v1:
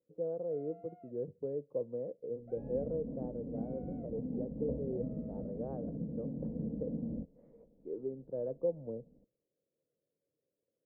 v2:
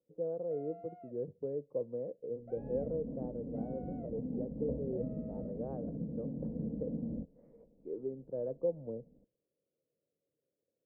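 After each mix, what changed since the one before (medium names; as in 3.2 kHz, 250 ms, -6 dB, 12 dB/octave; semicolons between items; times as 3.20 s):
first sound +4.5 dB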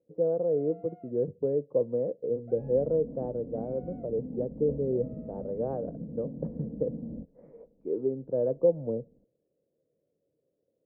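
speech +10.0 dB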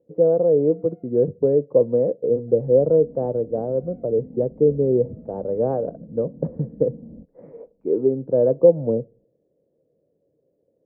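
speech +10.0 dB; first sound -7.0 dB; second sound: send off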